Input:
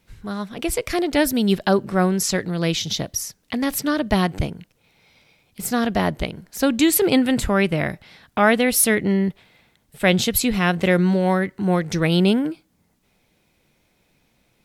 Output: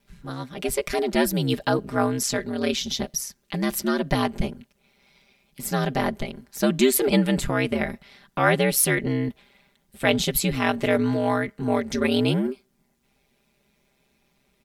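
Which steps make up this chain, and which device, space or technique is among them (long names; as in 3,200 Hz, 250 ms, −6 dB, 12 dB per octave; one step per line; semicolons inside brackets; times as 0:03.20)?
ring-modulated robot voice (ring modulation 66 Hz; comb filter 5 ms, depth 76%)
level −2 dB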